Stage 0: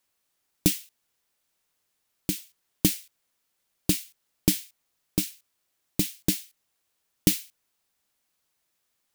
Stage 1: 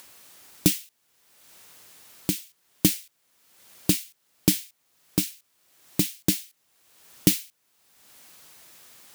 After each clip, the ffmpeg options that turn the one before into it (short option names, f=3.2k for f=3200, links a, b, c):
-filter_complex "[0:a]highpass=79,asplit=2[a][b];[b]acompressor=mode=upward:threshold=-24dB:ratio=2.5,volume=0dB[c];[a][c]amix=inputs=2:normalize=0,volume=-4dB"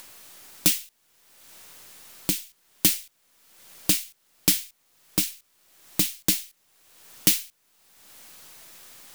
-filter_complex "[0:a]aeval=exprs='if(lt(val(0),0),0.708*val(0),val(0))':c=same,acrossover=split=720[a][b];[a]alimiter=limit=-20.5dB:level=0:latency=1:release=252[c];[c][b]amix=inputs=2:normalize=0,volume=4.5dB"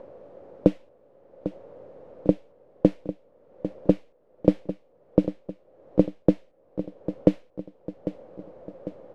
-af "lowpass=f=530:t=q:w=6.4,aecho=1:1:799|1598|2397|3196|3995:0.251|0.131|0.0679|0.0353|0.0184,volume=7.5dB"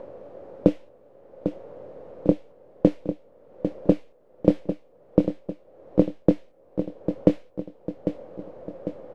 -filter_complex "[0:a]asplit=2[a][b];[b]adelay=24,volume=-11dB[c];[a][c]amix=inputs=2:normalize=0,asplit=2[d][e];[e]alimiter=limit=-10.5dB:level=0:latency=1:release=203,volume=0.5dB[f];[d][f]amix=inputs=2:normalize=0,volume=-2.5dB"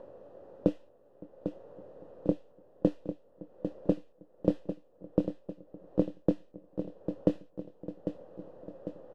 -filter_complex "[0:a]asuperstop=centerf=2200:order=4:qfactor=5.3,asplit=2[a][b];[b]adelay=563,lowpass=f=1k:p=1,volume=-21.5dB,asplit=2[c][d];[d]adelay=563,lowpass=f=1k:p=1,volume=0.51,asplit=2[e][f];[f]adelay=563,lowpass=f=1k:p=1,volume=0.51,asplit=2[g][h];[h]adelay=563,lowpass=f=1k:p=1,volume=0.51[i];[a][c][e][g][i]amix=inputs=5:normalize=0,volume=-8.5dB"